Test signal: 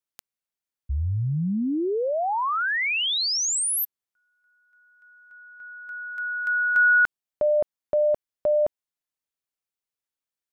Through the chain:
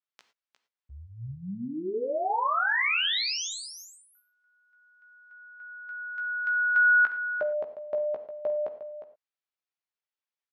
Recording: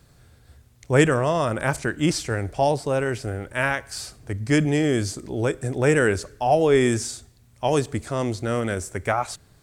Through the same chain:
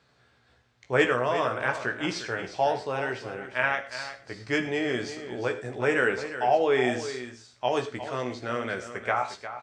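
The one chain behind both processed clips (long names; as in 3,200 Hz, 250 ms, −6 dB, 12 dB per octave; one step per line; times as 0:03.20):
high-pass filter 850 Hz 6 dB per octave
high-frequency loss of the air 170 metres
double-tracking delay 16 ms −6 dB
on a send: single-tap delay 356 ms −11.5 dB
on the sum: reverb whose tail is shaped and stops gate 130 ms flat, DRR 10 dB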